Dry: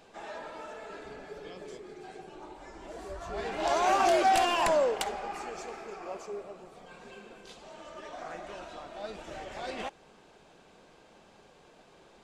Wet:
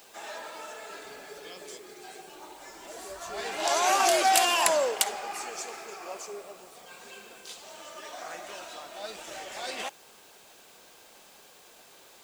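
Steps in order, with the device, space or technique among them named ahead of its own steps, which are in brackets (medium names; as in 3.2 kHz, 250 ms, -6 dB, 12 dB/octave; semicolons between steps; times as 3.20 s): turntable without a phono preamp (RIAA curve recording; white noise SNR 27 dB); trim +1.5 dB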